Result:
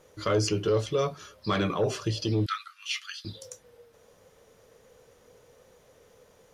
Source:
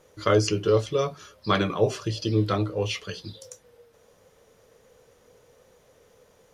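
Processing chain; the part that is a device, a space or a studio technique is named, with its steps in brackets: 2.46–3.25 s: steep high-pass 1.2 kHz 96 dB/octave; soft clipper into limiter (saturation -12 dBFS, distortion -20 dB; peak limiter -17.5 dBFS, peak gain reduction 4.5 dB)

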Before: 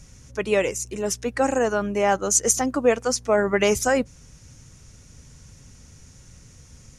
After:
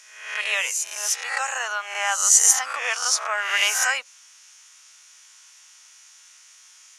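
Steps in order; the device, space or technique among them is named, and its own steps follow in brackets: reverse spectral sustain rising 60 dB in 0.70 s; headphones lying on a table (high-pass 1 kHz 24 dB/octave; peaking EQ 3.1 kHz +5.5 dB 0.56 oct); trim +1.5 dB

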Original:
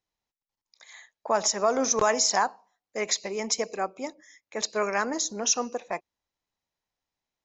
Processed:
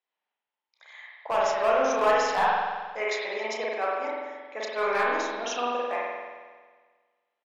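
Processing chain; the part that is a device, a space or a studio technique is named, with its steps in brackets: megaphone (band-pass 530–2800 Hz; peaking EQ 3 kHz +5.5 dB 0.55 oct; hard clipper -20.5 dBFS, distortion -14 dB; doubling 33 ms -9.5 dB); spring tank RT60 1.5 s, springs 45 ms, chirp 60 ms, DRR -5 dB; trim -1.5 dB

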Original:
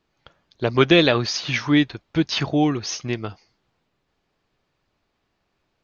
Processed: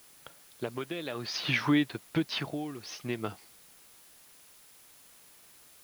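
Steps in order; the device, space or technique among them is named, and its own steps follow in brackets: medium wave at night (band-pass 140–4300 Hz; compression 4:1, threshold -24 dBFS, peak gain reduction 12.5 dB; tremolo 0.55 Hz, depth 76%; whistle 10 kHz -64 dBFS; white noise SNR 22 dB); trim +1 dB

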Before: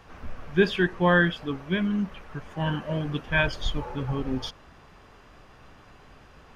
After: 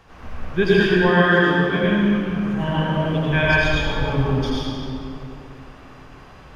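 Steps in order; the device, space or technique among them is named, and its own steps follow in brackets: stairwell (reverberation RT60 2.7 s, pre-delay 76 ms, DRR -7.5 dB); 1.10–1.84 s: high-pass 130 Hz 6 dB/octave

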